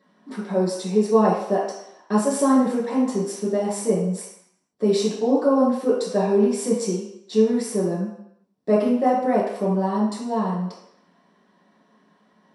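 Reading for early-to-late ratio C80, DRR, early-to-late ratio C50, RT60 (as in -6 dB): 6.0 dB, -6.5 dB, 2.5 dB, 0.75 s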